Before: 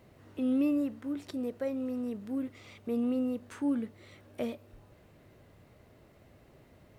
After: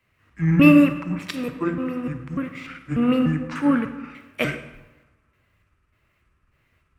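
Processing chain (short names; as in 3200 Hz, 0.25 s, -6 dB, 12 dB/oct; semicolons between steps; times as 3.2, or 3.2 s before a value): trilling pitch shifter -8 st, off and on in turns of 0.296 s; band shelf 1700 Hz +13 dB; digital reverb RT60 2.2 s, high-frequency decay 0.65×, pre-delay 5 ms, DRR 6 dB; three-band expander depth 100%; gain +8 dB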